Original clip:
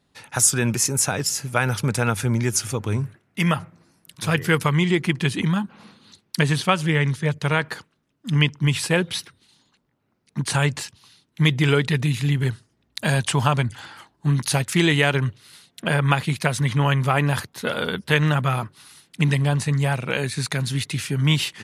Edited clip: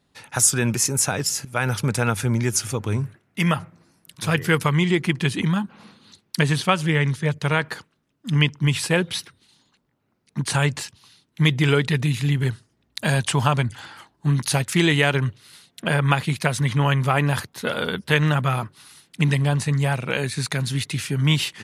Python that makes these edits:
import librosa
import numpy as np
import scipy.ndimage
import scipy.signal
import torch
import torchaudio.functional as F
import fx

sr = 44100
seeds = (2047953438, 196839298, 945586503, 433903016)

y = fx.edit(x, sr, fx.fade_in_from(start_s=1.45, length_s=0.28, curve='qsin', floor_db=-16.0), tone=tone)